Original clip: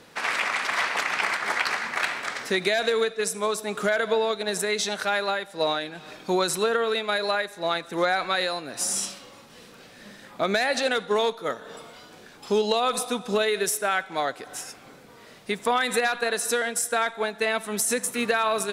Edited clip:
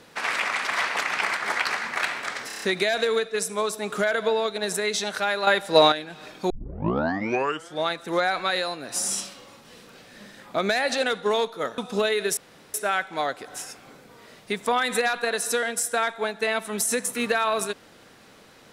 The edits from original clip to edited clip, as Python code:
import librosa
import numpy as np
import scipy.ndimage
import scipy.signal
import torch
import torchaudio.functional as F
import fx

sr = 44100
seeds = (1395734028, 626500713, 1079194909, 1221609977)

y = fx.edit(x, sr, fx.stutter(start_s=2.47, slice_s=0.03, count=6),
    fx.clip_gain(start_s=5.32, length_s=0.45, db=9.0),
    fx.tape_start(start_s=6.35, length_s=1.39),
    fx.cut(start_s=11.63, length_s=1.51),
    fx.insert_room_tone(at_s=13.73, length_s=0.37), tone=tone)